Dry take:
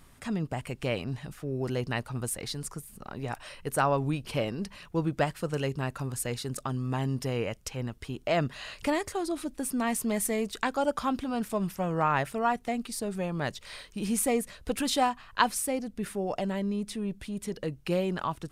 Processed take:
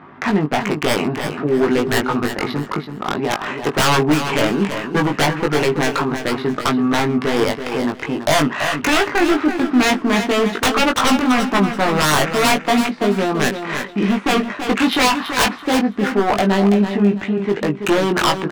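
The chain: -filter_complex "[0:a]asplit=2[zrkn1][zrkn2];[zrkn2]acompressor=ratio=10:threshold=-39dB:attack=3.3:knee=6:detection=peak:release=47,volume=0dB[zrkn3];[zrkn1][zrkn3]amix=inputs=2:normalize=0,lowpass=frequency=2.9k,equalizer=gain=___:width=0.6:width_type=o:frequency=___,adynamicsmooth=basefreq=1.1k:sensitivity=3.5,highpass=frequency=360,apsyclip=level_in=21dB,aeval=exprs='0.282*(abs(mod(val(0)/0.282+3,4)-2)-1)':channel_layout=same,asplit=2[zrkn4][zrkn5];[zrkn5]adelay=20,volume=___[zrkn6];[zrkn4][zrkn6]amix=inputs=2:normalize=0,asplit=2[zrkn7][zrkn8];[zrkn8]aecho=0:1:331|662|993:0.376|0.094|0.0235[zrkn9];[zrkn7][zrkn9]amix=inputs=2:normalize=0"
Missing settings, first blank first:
-11, 530, -4dB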